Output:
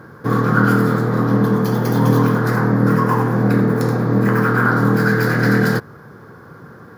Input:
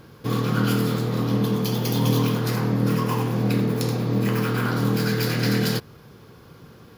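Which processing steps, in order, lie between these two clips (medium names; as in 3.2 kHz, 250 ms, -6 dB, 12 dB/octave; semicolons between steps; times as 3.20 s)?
high-pass 99 Hz; resonant high shelf 2.1 kHz -9 dB, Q 3; trim +7 dB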